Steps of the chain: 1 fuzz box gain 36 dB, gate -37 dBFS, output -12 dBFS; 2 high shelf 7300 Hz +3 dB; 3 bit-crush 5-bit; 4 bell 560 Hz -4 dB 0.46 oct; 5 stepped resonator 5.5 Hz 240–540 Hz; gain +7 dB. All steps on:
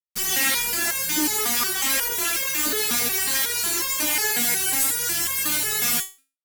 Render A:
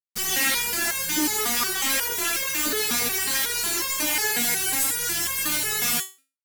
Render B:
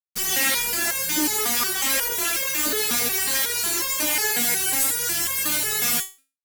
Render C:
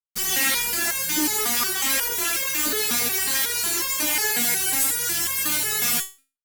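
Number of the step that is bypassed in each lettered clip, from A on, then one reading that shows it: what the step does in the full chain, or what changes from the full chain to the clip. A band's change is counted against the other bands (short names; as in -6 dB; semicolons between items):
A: 2, 8 kHz band -1.5 dB; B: 4, 500 Hz band +1.5 dB; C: 3, distortion -19 dB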